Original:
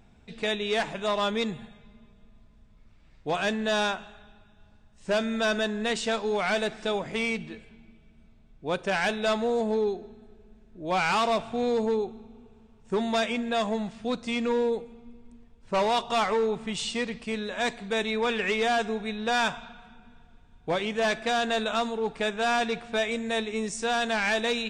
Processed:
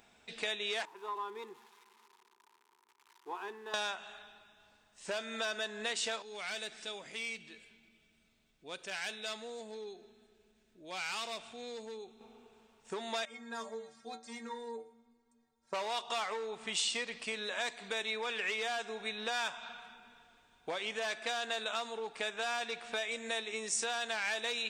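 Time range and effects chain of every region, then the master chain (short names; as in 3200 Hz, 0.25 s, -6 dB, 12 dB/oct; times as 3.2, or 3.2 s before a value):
0.85–3.74 switching spikes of -26 dBFS + double band-pass 600 Hz, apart 1.3 oct
6.22–12.21 bell 830 Hz -9 dB 2.4 oct + compressor 1.5:1, threshold -52 dBFS
13.25–15.73 bell 2800 Hz -14 dB 0.46 oct + metallic resonator 68 Hz, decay 0.59 s, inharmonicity 0.03
whole clip: tone controls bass -11 dB, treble -2 dB; compressor 5:1, threshold -35 dBFS; tilt +2.5 dB/oct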